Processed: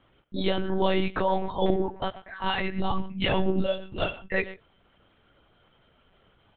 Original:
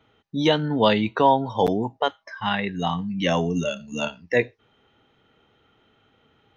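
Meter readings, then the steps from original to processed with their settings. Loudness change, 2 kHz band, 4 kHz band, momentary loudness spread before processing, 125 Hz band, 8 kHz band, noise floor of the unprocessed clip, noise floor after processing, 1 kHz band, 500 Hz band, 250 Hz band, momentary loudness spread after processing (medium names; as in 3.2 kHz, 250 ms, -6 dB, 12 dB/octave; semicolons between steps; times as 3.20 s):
-5.0 dB, -3.5 dB, -4.5 dB, 10 LU, -4.5 dB, no reading, -64 dBFS, -64 dBFS, -6.5 dB, -4.5 dB, -5.0 dB, 7 LU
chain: peak limiter -14 dBFS, peak gain reduction 8 dB; speakerphone echo 120 ms, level -14 dB; chorus voices 2, 0.69 Hz, delay 15 ms, depth 4.3 ms; monotone LPC vocoder at 8 kHz 190 Hz; trim +2.5 dB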